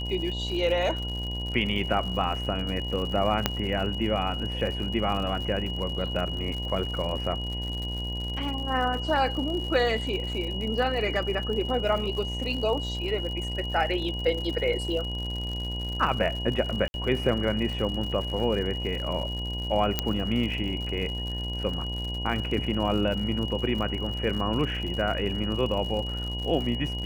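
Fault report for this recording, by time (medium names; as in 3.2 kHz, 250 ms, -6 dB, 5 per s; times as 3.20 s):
buzz 60 Hz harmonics 17 -33 dBFS
crackle 110 per s -34 dBFS
whine 2.9 kHz -34 dBFS
3.46 s: pop -6 dBFS
16.88–16.94 s: dropout 61 ms
19.99 s: pop -8 dBFS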